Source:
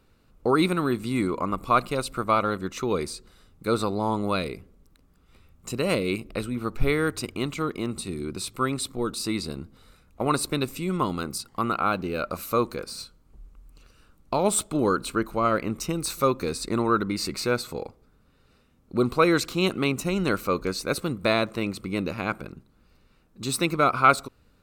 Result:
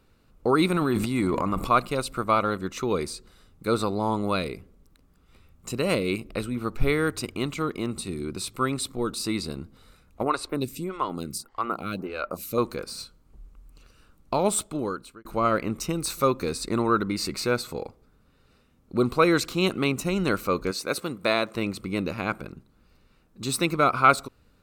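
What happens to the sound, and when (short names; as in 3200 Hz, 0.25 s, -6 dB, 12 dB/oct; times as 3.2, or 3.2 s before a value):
0.7–1.71 transient shaper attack -1 dB, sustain +11 dB
10.23–12.58 photocell phaser 1.7 Hz
14.41–15.25 fade out
20.71–21.55 HPF 300 Hz 6 dB/oct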